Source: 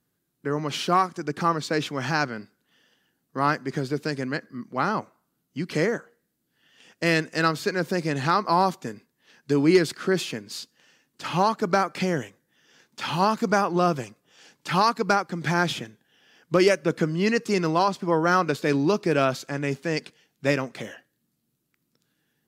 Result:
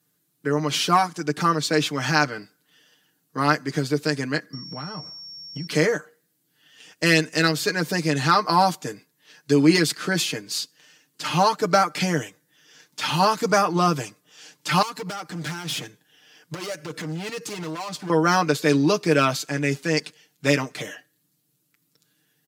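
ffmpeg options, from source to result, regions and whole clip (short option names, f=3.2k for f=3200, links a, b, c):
-filter_complex "[0:a]asettb=1/sr,asplit=3[a][b][c];[a]atrim=end=4.534[d];[b]atrim=start=4.53:end=5.67,asetpts=PTS-STARTPTS,afade=t=in:d=0.004:c=qsin,afade=t=out:st=1.136:d=0.004:c=qsin,equalizer=f=150:t=o:w=1.1:g=13.5,acompressor=threshold=-32dB:ratio=12:attack=3.2:release=140:knee=1:detection=peak,aeval=exprs='val(0)+0.00631*sin(2*PI*5500*n/s)':c=same[e];[c]atrim=start=5.666[f];[d][e]acrossfade=d=0.004:c1=hsin:c2=qsin[g];[g][f]acrossfade=d=0.004:c1=qsin:c2=hsin,asettb=1/sr,asplit=3[h][i][j];[h]atrim=end=14.824[k];[i]atrim=start=14.82:end=18.1,asetpts=PTS-STARTPTS,afade=t=in:d=0.004:c=qsin,afade=t=out:st=3.276:d=0.004:c=qsin,acompressor=threshold=-26dB:ratio=5:attack=3.2:release=140:knee=1:detection=peak,volume=31dB,asoftclip=hard,volume=-31dB[l];[j]atrim=start=18.096[m];[k][l]acrossfade=d=0.004:c1=hsin:c2=qsin[n];[n][m]acrossfade=d=0.004:c1=qsin:c2=hsin,highpass=100,highshelf=f=2.9k:g=8,aecho=1:1:6.6:0.74"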